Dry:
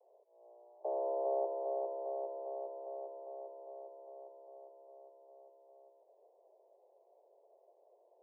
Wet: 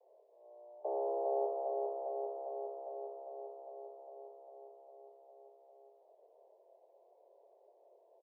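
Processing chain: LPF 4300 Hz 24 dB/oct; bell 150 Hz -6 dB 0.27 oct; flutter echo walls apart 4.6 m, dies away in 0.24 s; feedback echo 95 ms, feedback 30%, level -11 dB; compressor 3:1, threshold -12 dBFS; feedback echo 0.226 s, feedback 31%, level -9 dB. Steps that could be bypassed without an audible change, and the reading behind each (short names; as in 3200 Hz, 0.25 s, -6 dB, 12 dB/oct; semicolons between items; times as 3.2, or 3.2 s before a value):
LPF 4300 Hz: input band ends at 1100 Hz; bell 150 Hz: input band starts at 340 Hz; compressor, threshold -12 dBFS: input peak -24.0 dBFS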